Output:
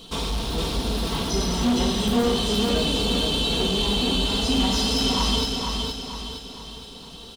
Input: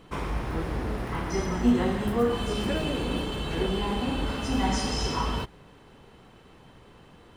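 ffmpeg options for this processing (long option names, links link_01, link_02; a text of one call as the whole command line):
ffmpeg -i in.wav -filter_complex "[0:a]acrossover=split=3100[link_01][link_02];[link_02]acompressor=threshold=-47dB:ratio=4:attack=1:release=60[link_03];[link_01][link_03]amix=inputs=2:normalize=0,highshelf=frequency=2700:width_type=q:width=3:gain=11,aecho=1:1:4.4:0.46,asoftclip=type=tanh:threshold=-22.5dB,aecho=1:1:465|930|1395|1860|2325|2790:0.631|0.29|0.134|0.0614|0.0283|0.013,volume=4dB" out.wav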